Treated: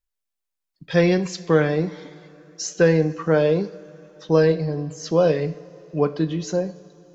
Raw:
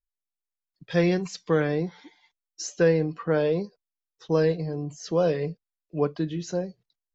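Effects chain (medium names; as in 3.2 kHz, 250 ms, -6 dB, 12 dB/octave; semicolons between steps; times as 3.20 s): two-slope reverb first 0.58 s, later 3.9 s, from -16 dB, DRR 11 dB; trim +5 dB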